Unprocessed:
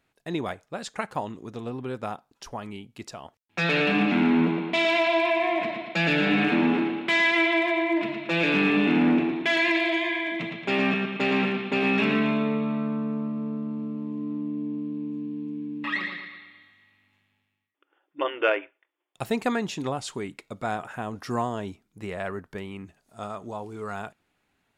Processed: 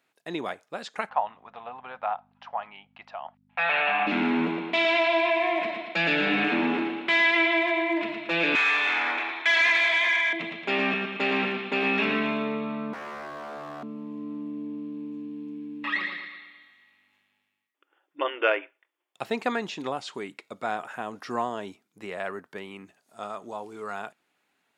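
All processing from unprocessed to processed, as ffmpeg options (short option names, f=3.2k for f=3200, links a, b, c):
-filter_complex "[0:a]asettb=1/sr,asplit=3[a][b][c];[a]atrim=end=1.094[d];[b]atrim=start=1.09:end=4.07,asetpts=PTS-STARTPTS,afade=t=in:d=0.004:c=qsin,afade=t=out:st=2.976:d=0.004:c=qsin,lowpass=f=3k:w=0.5412,lowpass=f=3k:w=1.3066,lowshelf=f=520:t=q:w=3:g=-12.5,aeval=exprs='val(0)+0.00316*(sin(2*PI*50*n/s)+sin(2*PI*2*50*n/s)/2+sin(2*PI*3*50*n/s)/3+sin(2*PI*4*50*n/s)/4+sin(2*PI*5*50*n/s)/5)':c=same[e];[c]atrim=start=4.066[f];[d][e]acrossfade=d=0.004:c1=hsin:c2=qsin[g];[g][f]acrossfade=d=0.004:c1=qsin:c2=hsin,asettb=1/sr,asplit=3[h][i][j];[h]atrim=end=8.554[k];[i]atrim=start=8.55:end=10.33,asetpts=PTS-STARTPTS,afade=t=in:d=0.004:c=qsin,afade=t=out:st=1.776:d=0.004:c=qsin,highpass=1k,bandreject=f=2.8k:w=6.6,asplit=2[l][m];[m]highpass=f=720:p=1,volume=15dB,asoftclip=type=tanh:threshold=-14dB[n];[l][n]amix=inputs=2:normalize=0,lowpass=f=4.5k:p=1,volume=-6dB[o];[j]atrim=start=10.326[p];[k][o]acrossfade=d=0.004:c1=hsin:c2=qsin[q];[q][p]acrossfade=d=0.004:c1=qsin:c2=hsin,asettb=1/sr,asplit=3[r][s][t];[r]atrim=end=12.934[u];[s]atrim=start=12.93:end=13.83,asetpts=PTS-STARTPTS,afade=t=in:d=0.004:c=qsin,afade=t=out:st=0.896:d=0.004:c=qsin,tiltshelf=f=720:g=6,bandreject=f=50:t=h:w=6,bandreject=f=100:t=h:w=6,bandreject=f=150:t=h:w=6,bandreject=f=200:t=h:w=6,bandreject=f=250:t=h:w=6,bandreject=f=300:t=h:w=6,bandreject=f=350:t=h:w=6,aeval=exprs='0.0251*(abs(mod(val(0)/0.0251+3,4)-2)-1)':c=same[v];[t]atrim=start=13.826[w];[u][v]acrossfade=d=0.004:c1=hsin:c2=qsin[x];[x][w]acrossfade=d=0.004:c1=qsin:c2=hsin,highpass=190,acrossover=split=5300[y][z];[z]acompressor=threshold=-59dB:ratio=4:attack=1:release=60[aa];[y][aa]amix=inputs=2:normalize=0,lowshelf=f=370:g=-6.5,volume=1dB"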